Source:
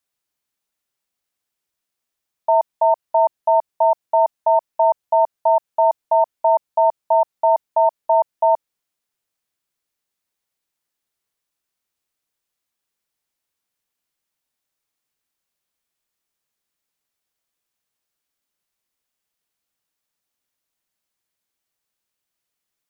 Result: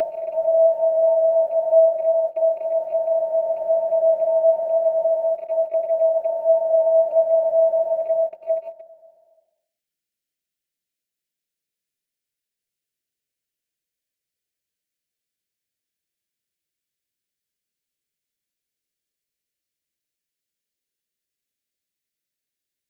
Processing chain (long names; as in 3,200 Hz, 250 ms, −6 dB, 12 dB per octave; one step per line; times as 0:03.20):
extreme stretch with random phases 8.8×, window 0.50 s, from 0:07.69
in parallel at +2 dB: downward compressor 6 to 1, threshold −27 dBFS, peak gain reduction 16.5 dB
on the sum: noise gate −19 dBFS, range −17 dB
Butterworth band-reject 980 Hz, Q 0.93
level +5.5 dB